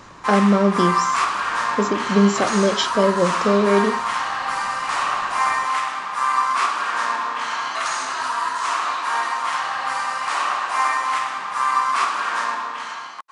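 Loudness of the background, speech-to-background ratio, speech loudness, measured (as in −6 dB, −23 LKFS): −22.0 LKFS, 2.5 dB, −19.5 LKFS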